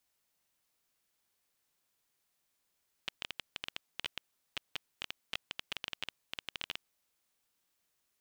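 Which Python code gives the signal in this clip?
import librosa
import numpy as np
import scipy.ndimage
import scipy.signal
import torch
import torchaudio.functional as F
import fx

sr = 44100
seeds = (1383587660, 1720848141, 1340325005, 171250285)

y = fx.geiger_clicks(sr, seeds[0], length_s=3.86, per_s=12.0, level_db=-19.0)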